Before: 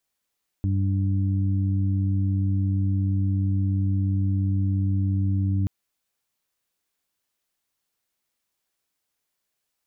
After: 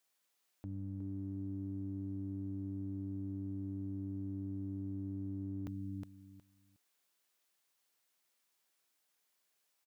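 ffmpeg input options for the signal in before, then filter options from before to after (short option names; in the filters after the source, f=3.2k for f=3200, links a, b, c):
-f lavfi -i "aevalsrc='0.0944*sin(2*PI*97.1*t)+0.0335*sin(2*PI*194.2*t)+0.0251*sin(2*PI*291.3*t)':d=5.03:s=44100"
-filter_complex "[0:a]asplit=2[a][b];[b]aecho=0:1:364|728|1092:0.355|0.0639|0.0115[c];[a][c]amix=inputs=2:normalize=0,alimiter=level_in=4.5dB:limit=-24dB:level=0:latency=1:release=11,volume=-4.5dB,highpass=f=340:p=1"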